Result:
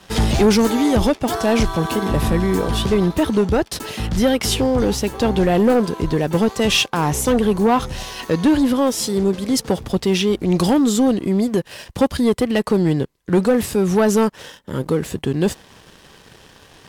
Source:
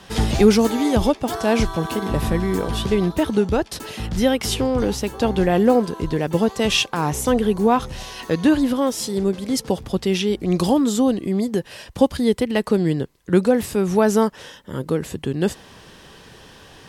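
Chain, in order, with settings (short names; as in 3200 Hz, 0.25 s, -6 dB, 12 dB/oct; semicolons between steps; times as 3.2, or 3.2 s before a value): sample leveller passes 2; gain -3.5 dB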